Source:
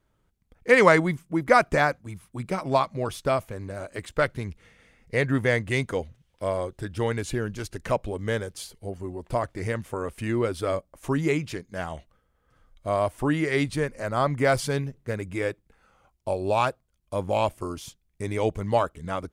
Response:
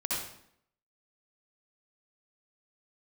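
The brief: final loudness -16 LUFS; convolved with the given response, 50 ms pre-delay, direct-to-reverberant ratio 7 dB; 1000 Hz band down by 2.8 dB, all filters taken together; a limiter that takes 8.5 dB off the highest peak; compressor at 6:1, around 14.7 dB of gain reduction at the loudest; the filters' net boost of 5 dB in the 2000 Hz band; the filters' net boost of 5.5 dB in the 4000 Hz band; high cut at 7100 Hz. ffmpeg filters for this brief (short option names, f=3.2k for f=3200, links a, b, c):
-filter_complex "[0:a]lowpass=7.1k,equalizer=f=1k:t=o:g=-6,equalizer=f=2k:t=o:g=6.5,equalizer=f=4k:t=o:g=5.5,acompressor=threshold=-27dB:ratio=6,alimiter=limit=-23.5dB:level=0:latency=1,asplit=2[a][b];[1:a]atrim=start_sample=2205,adelay=50[c];[b][c]afir=irnorm=-1:irlink=0,volume=-13dB[d];[a][d]amix=inputs=2:normalize=0,volume=19dB"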